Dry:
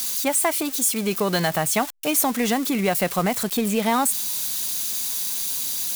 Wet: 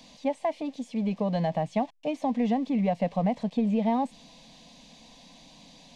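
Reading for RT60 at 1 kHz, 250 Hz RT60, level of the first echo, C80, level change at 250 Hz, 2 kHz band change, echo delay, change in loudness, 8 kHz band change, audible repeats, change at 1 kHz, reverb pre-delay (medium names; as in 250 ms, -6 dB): no reverb, no reverb, no echo, no reverb, -2.0 dB, -16.5 dB, no echo, -6.5 dB, under -30 dB, no echo, -6.0 dB, no reverb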